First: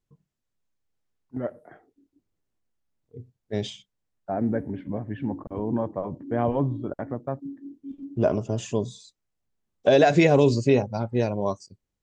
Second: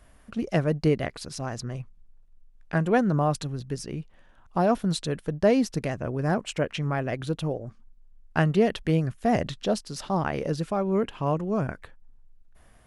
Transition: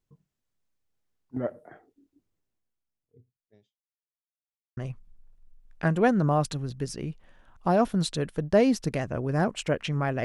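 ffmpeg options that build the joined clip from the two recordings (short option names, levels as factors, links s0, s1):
-filter_complex "[0:a]apad=whole_dur=10.24,atrim=end=10.24,asplit=2[s0][s1];[s0]atrim=end=3.79,asetpts=PTS-STARTPTS,afade=t=out:st=2.27:d=1.52:c=qua[s2];[s1]atrim=start=3.79:end=4.77,asetpts=PTS-STARTPTS,volume=0[s3];[1:a]atrim=start=1.67:end=7.14,asetpts=PTS-STARTPTS,afade=t=in:d=0.004:c=hsin[s4];[s2][s3][s4]concat=n=3:v=0:a=1"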